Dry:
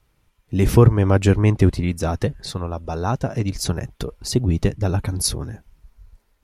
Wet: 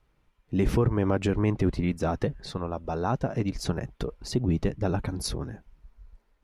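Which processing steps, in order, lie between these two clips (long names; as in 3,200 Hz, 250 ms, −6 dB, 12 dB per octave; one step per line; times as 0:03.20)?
low-pass filter 2,400 Hz 6 dB per octave
parametric band 92 Hz −8 dB 0.71 octaves
brickwall limiter −12 dBFS, peak gain reduction 8.5 dB
level −2.5 dB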